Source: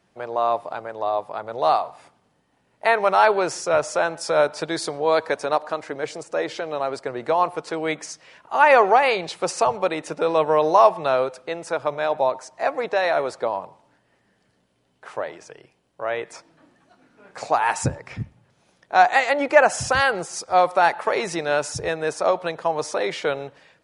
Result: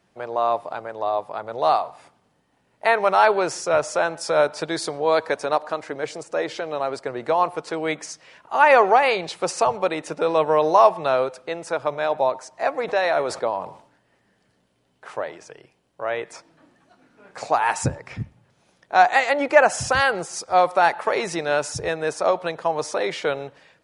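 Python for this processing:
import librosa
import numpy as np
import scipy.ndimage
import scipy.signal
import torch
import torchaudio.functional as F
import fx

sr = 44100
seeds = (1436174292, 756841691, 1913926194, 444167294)

y = fx.sustainer(x, sr, db_per_s=110.0, at=(12.87, 15.14), fade=0.02)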